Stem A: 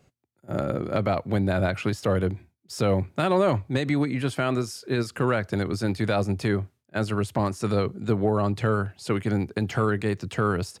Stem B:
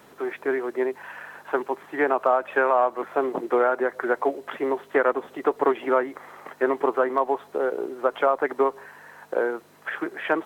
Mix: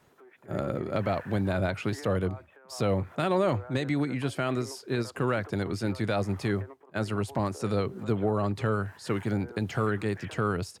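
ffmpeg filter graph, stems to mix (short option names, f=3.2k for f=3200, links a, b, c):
-filter_complex "[0:a]volume=-4dB,asplit=2[a][b];[1:a]acompressor=threshold=-30dB:ratio=6,alimiter=level_in=8dB:limit=-24dB:level=0:latency=1:release=464,volume=-8dB,volume=-4dB[c];[b]apad=whole_len=460960[d];[c][d]sidechaingate=range=-9dB:threshold=-44dB:ratio=16:detection=peak[e];[a][e]amix=inputs=2:normalize=0"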